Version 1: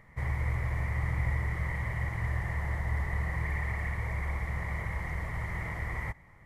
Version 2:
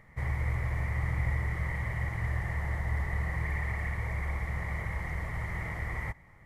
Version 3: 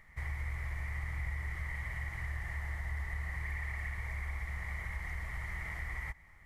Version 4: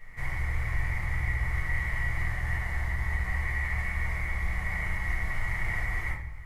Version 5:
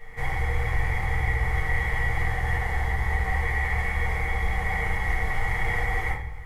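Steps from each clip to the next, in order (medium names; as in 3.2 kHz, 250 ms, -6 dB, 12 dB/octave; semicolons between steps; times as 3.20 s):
band-stop 1 kHz, Q 24
ten-band graphic EQ 125 Hz -11 dB, 250 Hz -7 dB, 500 Hz -10 dB, 1 kHz -4 dB; compression 2:1, threshold -39 dBFS, peak gain reduction 5.5 dB; trim +1.5 dB
reverberation RT60 0.55 s, pre-delay 4 ms, DRR -8 dB
small resonant body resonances 470/780/3300 Hz, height 16 dB, ringing for 60 ms; trim +4 dB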